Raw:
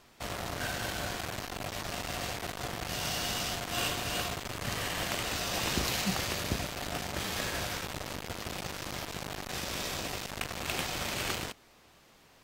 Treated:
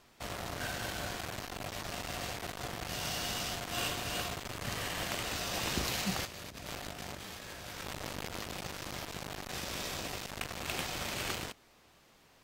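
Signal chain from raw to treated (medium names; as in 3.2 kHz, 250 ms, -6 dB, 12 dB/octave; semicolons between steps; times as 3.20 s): 6.25–8.52 s: compressor with a negative ratio -41 dBFS, ratio -1; trim -3 dB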